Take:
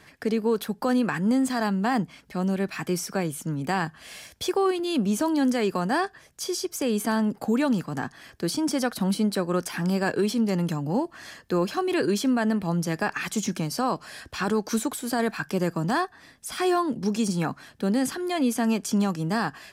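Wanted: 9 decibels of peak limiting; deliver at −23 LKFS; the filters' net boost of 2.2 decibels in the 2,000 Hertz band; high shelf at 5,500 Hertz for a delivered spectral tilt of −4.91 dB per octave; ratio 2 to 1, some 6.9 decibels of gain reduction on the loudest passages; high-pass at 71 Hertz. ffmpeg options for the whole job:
ffmpeg -i in.wav -af "highpass=71,equalizer=frequency=2000:width_type=o:gain=3.5,highshelf=frequency=5500:gain=-5.5,acompressor=threshold=-32dB:ratio=2,volume=12.5dB,alimiter=limit=-14dB:level=0:latency=1" out.wav

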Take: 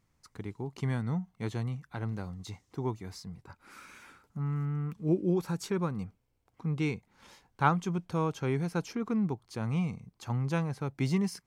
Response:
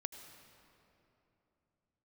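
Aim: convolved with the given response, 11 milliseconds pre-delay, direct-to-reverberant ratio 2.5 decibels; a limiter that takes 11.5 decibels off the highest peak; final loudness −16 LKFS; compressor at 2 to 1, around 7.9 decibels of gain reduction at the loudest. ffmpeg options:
-filter_complex "[0:a]acompressor=threshold=-35dB:ratio=2,alimiter=level_in=6dB:limit=-24dB:level=0:latency=1,volume=-6dB,asplit=2[link_01][link_02];[1:a]atrim=start_sample=2205,adelay=11[link_03];[link_02][link_03]afir=irnorm=-1:irlink=0,volume=-0.5dB[link_04];[link_01][link_04]amix=inputs=2:normalize=0,volume=22.5dB"

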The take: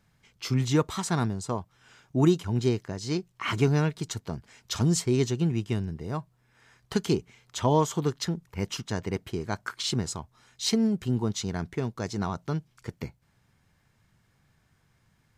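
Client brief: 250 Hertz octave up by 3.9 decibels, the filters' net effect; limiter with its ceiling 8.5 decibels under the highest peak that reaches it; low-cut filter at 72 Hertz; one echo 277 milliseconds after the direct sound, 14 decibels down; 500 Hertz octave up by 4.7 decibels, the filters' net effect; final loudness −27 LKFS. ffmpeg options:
ffmpeg -i in.wav -af "highpass=72,equalizer=frequency=250:width_type=o:gain=4,equalizer=frequency=500:width_type=o:gain=4.5,alimiter=limit=-15dB:level=0:latency=1,aecho=1:1:277:0.2,volume=1dB" out.wav

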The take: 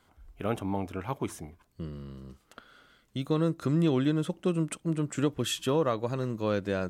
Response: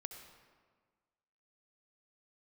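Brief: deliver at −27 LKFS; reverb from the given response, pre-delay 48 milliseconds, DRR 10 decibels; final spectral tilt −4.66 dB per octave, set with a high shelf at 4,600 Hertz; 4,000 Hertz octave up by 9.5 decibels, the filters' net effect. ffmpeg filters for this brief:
-filter_complex "[0:a]equalizer=frequency=4000:width_type=o:gain=9,highshelf=frequency=4600:gain=7,asplit=2[link_01][link_02];[1:a]atrim=start_sample=2205,adelay=48[link_03];[link_02][link_03]afir=irnorm=-1:irlink=0,volume=-6.5dB[link_04];[link_01][link_04]amix=inputs=2:normalize=0,volume=1.5dB"

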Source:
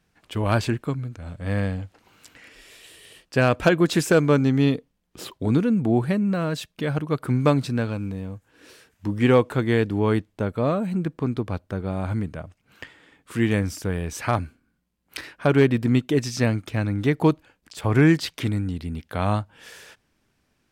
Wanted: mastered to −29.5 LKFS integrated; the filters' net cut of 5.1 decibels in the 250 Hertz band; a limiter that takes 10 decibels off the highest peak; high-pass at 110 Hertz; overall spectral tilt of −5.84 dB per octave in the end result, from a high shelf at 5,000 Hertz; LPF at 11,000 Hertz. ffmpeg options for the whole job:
ffmpeg -i in.wav -af "highpass=110,lowpass=11000,equalizer=frequency=250:width_type=o:gain=-6.5,highshelf=frequency=5000:gain=-4.5,alimiter=limit=-15.5dB:level=0:latency=1" out.wav

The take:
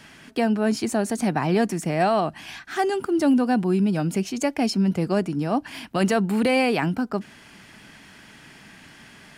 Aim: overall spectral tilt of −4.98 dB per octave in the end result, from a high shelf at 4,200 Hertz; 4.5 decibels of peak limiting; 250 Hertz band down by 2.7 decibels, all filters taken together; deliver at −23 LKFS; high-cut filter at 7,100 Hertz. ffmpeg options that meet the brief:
ffmpeg -i in.wav -af "lowpass=7100,equalizer=frequency=250:width_type=o:gain=-3.5,highshelf=frequency=4200:gain=7.5,volume=3dB,alimiter=limit=-12dB:level=0:latency=1" out.wav

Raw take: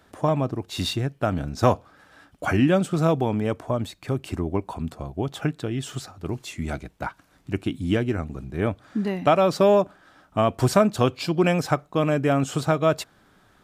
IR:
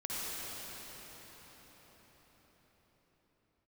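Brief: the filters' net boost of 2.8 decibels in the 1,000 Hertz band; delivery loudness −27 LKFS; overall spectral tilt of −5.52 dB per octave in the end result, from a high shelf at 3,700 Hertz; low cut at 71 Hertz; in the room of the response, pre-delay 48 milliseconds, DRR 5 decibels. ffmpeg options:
-filter_complex "[0:a]highpass=71,equalizer=frequency=1000:width_type=o:gain=3.5,highshelf=frequency=3700:gain=3.5,asplit=2[link_01][link_02];[1:a]atrim=start_sample=2205,adelay=48[link_03];[link_02][link_03]afir=irnorm=-1:irlink=0,volume=-10dB[link_04];[link_01][link_04]amix=inputs=2:normalize=0,volume=-4.5dB"

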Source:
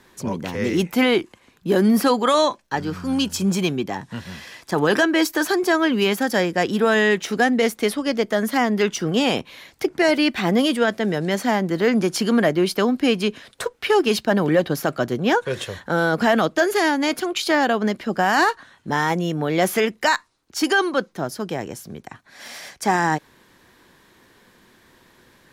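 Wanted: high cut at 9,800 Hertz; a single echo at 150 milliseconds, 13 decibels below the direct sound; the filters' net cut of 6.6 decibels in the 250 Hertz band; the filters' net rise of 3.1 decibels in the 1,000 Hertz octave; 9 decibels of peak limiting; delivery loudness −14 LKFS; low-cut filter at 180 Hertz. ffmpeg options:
ffmpeg -i in.wav -af "highpass=180,lowpass=9800,equalizer=frequency=250:width_type=o:gain=-7.5,equalizer=frequency=1000:width_type=o:gain=4.5,alimiter=limit=-13.5dB:level=0:latency=1,aecho=1:1:150:0.224,volume=10.5dB" out.wav

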